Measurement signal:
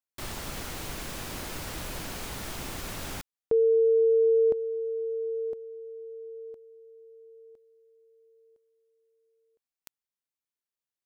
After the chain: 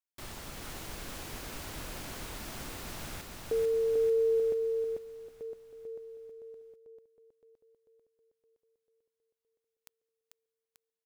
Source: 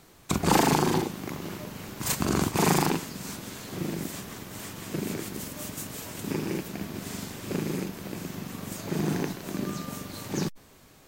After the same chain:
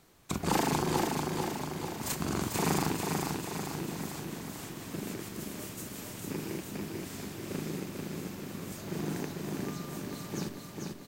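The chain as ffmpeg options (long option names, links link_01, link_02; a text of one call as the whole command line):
ffmpeg -i in.wav -af "aecho=1:1:443|886|1329|1772|2215|2658|3101|3544:0.668|0.381|0.217|0.124|0.0706|0.0402|0.0229|0.0131,volume=-7dB" out.wav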